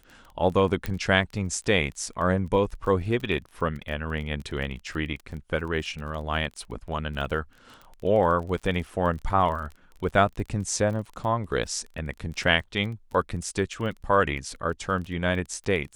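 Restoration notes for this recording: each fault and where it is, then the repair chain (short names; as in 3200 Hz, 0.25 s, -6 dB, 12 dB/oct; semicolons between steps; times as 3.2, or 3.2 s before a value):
crackle 22/s -34 dBFS
0.86 pop -14 dBFS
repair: de-click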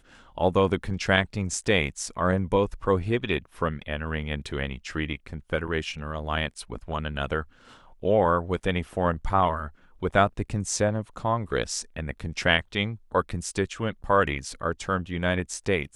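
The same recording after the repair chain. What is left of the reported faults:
0.86 pop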